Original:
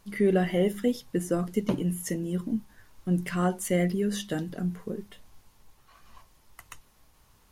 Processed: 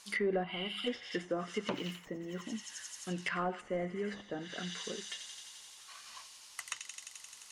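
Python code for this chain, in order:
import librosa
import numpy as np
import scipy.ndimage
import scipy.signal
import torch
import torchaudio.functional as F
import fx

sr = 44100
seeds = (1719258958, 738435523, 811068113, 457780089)

y = fx.weighting(x, sr, curve='ITU-R 468')
y = fx.echo_wet_highpass(y, sr, ms=87, feedback_pct=81, hz=2700.0, wet_db=-5.5)
y = 10.0 ** (-22.0 / 20.0) * np.tanh(y / 10.0 ** (-22.0 / 20.0))
y = fx.fixed_phaser(y, sr, hz=1800.0, stages=6, at=(0.43, 0.86), fade=0.02)
y = fx.env_lowpass_down(y, sr, base_hz=760.0, full_db=-27.5)
y = fx.resample_linear(y, sr, factor=2, at=(1.73, 2.42))
y = y * 10.0 ** (1.0 / 20.0)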